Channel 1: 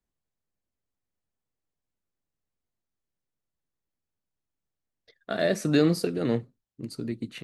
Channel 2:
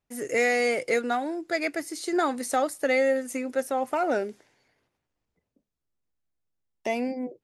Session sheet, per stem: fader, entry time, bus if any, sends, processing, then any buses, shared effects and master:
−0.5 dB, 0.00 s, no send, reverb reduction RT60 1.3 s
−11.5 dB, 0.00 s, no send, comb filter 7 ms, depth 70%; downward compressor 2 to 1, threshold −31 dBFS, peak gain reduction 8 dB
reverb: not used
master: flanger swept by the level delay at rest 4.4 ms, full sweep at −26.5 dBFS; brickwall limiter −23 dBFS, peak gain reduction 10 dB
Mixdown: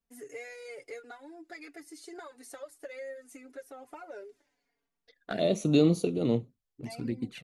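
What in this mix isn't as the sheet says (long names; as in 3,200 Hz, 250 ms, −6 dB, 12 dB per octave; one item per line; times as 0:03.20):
stem 1: missing reverb reduction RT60 1.3 s
master: missing brickwall limiter −23 dBFS, peak gain reduction 10 dB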